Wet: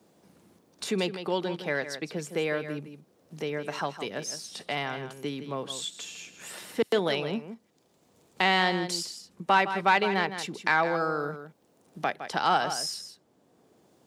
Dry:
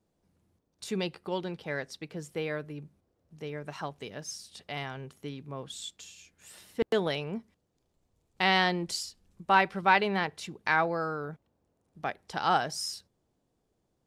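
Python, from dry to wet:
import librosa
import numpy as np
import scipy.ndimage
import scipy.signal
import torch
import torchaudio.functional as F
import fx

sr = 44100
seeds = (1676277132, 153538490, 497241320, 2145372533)

p1 = 10.0 ** (-18.5 / 20.0) * np.tanh(x / 10.0 ** (-18.5 / 20.0))
p2 = x + F.gain(torch.from_numpy(p1), -3.5).numpy()
p3 = scipy.signal.sosfilt(scipy.signal.butter(2, 180.0, 'highpass', fs=sr, output='sos'), p2)
p4 = p3 + 10.0 ** (-11.5 / 20.0) * np.pad(p3, (int(160 * sr / 1000.0), 0))[:len(p3)]
y = fx.band_squash(p4, sr, depth_pct=40)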